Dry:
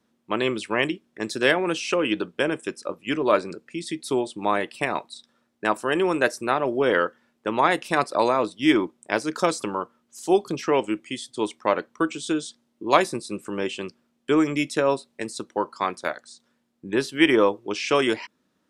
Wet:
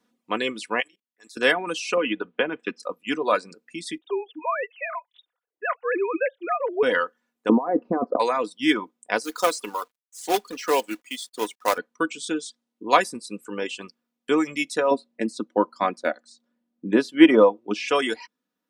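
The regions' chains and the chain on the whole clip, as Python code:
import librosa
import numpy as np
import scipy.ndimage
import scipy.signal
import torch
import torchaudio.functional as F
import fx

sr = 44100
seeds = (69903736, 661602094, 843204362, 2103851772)

y = fx.chain(x, sr, fx.highpass(hz=920.0, slope=6),
    fx.high_shelf(hz=6600.0, db=6.5),
    fx.level_steps(step_db=23), at=(0.8, 1.37))
y = fx.chain(y, sr, fx.lowpass(hz=3200.0, slope=24),
    fx.band_squash(depth_pct=100), at=(1.97, 2.8))
y = fx.chain(y, sr, fx.sine_speech(),
    fx.dynamic_eq(hz=840.0, q=2.0, threshold_db=-36.0, ratio=4.0, max_db=-3), at=(3.98, 6.83))
y = fx.chain(y, sr, fx.lowpass(hz=1200.0, slope=12),
    fx.over_compress(threshold_db=-27.0, ratio=-1.0),
    fx.curve_eq(hz=(110.0, 250.0, 1200.0, 2100.0, 8100.0), db=(0, 13, 0, -12, -25)), at=(7.49, 8.2))
y = fx.chain(y, sr, fx.highpass(hz=300.0, slope=12),
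    fx.quant_companded(bits=4), at=(9.24, 11.78))
y = fx.chain(y, sr, fx.lowpass(hz=3600.0, slope=6),
    fx.small_body(hz=(220.0, 320.0, 570.0), ring_ms=35, db=10), at=(14.91, 17.88))
y = fx.low_shelf(y, sr, hz=150.0, db=-12.0)
y = fx.dereverb_blind(y, sr, rt60_s=1.3)
y = y + 0.48 * np.pad(y, (int(4.1 * sr / 1000.0), 0))[:len(y)]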